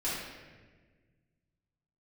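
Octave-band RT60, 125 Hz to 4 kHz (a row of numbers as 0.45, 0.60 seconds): 2.5, 2.1, 1.7, 1.2, 1.4, 1.0 seconds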